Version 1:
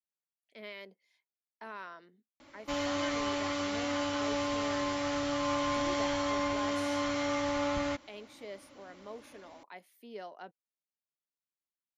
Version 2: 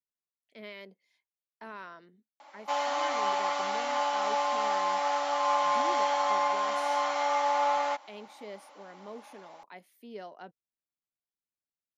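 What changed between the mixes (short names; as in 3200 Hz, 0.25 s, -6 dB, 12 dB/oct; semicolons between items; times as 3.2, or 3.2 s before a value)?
background: add resonant high-pass 790 Hz, resonance Q 5.6; master: add low shelf 170 Hz +10 dB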